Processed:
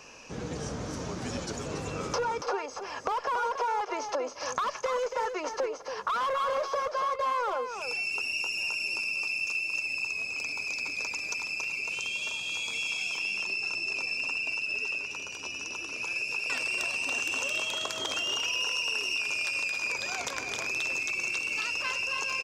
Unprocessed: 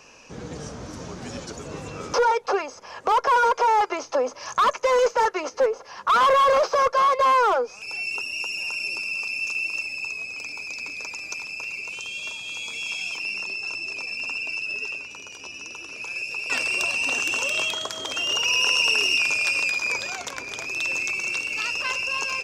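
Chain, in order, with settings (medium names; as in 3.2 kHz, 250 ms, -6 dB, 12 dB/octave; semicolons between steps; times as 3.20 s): compression 6:1, threshold -29 dBFS, peak gain reduction 12 dB; delay 281 ms -8 dB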